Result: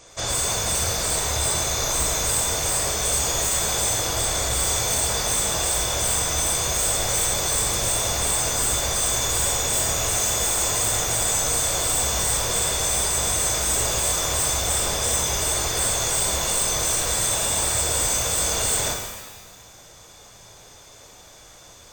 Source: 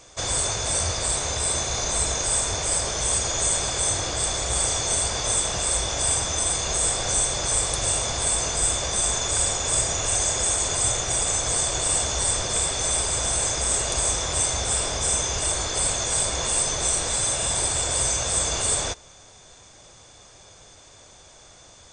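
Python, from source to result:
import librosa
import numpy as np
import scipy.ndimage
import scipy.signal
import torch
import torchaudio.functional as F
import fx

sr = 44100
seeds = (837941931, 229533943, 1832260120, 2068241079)

y = 10.0 ** (-18.5 / 20.0) * (np.abs((x / 10.0 ** (-18.5 / 20.0) + 3.0) % 4.0 - 2.0) - 1.0)
y = fx.rev_shimmer(y, sr, seeds[0], rt60_s=1.2, semitones=12, shimmer_db=-8, drr_db=1.5)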